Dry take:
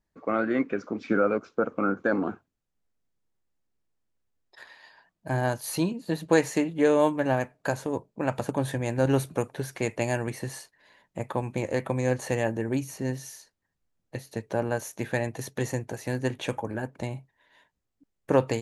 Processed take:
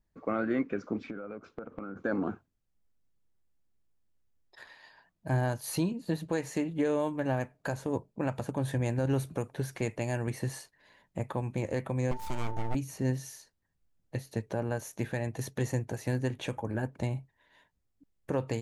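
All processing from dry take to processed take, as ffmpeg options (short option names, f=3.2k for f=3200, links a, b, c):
-filter_complex "[0:a]asettb=1/sr,asplit=3[a][b][c];[a]atrim=end=0.984[d];[b]atrim=start=0.98:end=1.96,asetpts=PTS-STARTPTS,afade=t=in:d=0.004:c=qsin,afade=t=out:st=0.976:d=0.004:c=qsin,equalizer=f=6.2k:w=1.1:g=-7,acompressor=threshold=-34dB:ratio=20:attack=3.2:release=140:knee=1:detection=peak[e];[c]atrim=start=1.956[f];[d][e]acrossfade=d=0.004:c1=hsin:c2=qsin[g];[g][f]acrossfade=d=0.004:c1=qsin:c2=hsin,asettb=1/sr,asplit=3[h][i][j];[h]atrim=end=12.114[k];[i]atrim=start=12.11:end=12.75,asetpts=PTS-STARTPTS,afade=t=in:d=0.004:c=qsin,afade=t=out:st=0.636:d=0.004:c=qsin,aeval=exprs='abs(val(0))':c=same,aeval=exprs='val(0)+0.02*sin(2*PI*890*n/s)':c=same[l];[j]atrim=start=12.746[m];[k][l]acrossfade=d=0.004:c1=hsin:c2=qsin[n];[n][m]acrossfade=d=0.004:c1=qsin:c2=hsin,lowshelf=f=170:g=8.5,alimiter=limit=-16.5dB:level=0:latency=1:release=271,volume=-3dB"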